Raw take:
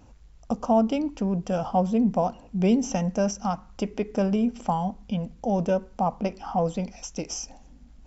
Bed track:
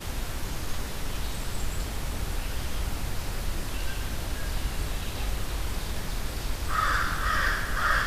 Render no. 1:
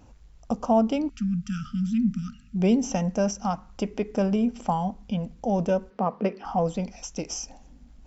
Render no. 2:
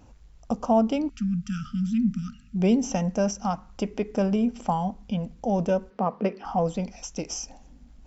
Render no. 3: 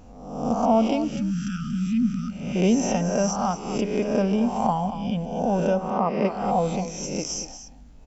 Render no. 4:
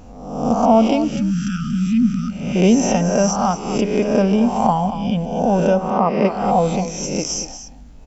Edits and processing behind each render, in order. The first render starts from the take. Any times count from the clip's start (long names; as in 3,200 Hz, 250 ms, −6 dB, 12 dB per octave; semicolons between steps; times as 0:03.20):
0:01.09–0:02.56: linear-phase brick-wall band-stop 260–1,200 Hz; 0:05.90–0:06.45: loudspeaker in its box 190–4,500 Hz, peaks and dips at 200 Hz +4 dB, 430 Hz +10 dB, 810 Hz −6 dB, 1,200 Hz +4 dB, 1,800 Hz +7 dB, 3,400 Hz −3 dB
no processing that can be heard
peak hold with a rise ahead of every peak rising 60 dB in 0.90 s; single-tap delay 233 ms −11.5 dB
level +6.5 dB